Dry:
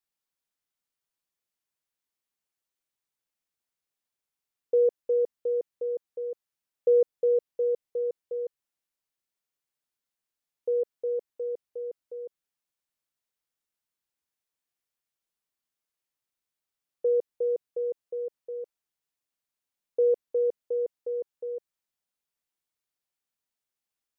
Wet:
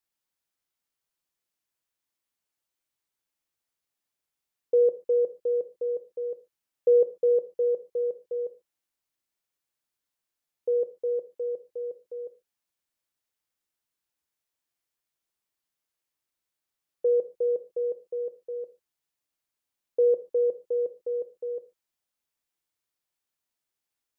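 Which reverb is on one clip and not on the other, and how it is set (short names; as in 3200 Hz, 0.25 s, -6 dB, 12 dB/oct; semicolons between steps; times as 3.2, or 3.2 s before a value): non-linear reverb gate 0.16 s falling, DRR 10.5 dB; gain +1.5 dB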